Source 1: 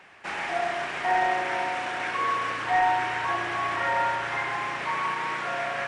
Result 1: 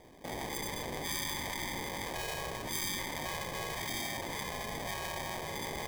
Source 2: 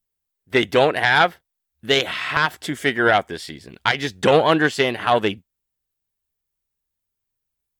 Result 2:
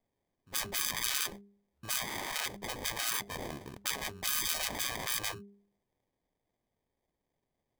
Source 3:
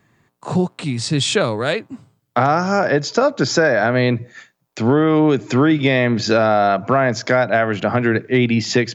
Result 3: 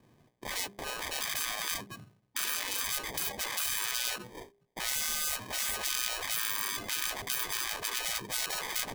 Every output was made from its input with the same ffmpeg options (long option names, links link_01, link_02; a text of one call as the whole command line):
ffmpeg -i in.wav -af "acrusher=samples=32:mix=1:aa=0.000001,bandreject=frequency=201.5:width_type=h:width=4,bandreject=frequency=403:width_type=h:width=4,afftfilt=real='re*lt(hypot(re,im),0.112)':imag='im*lt(hypot(re,im),0.112)':win_size=1024:overlap=0.75,volume=-4dB" out.wav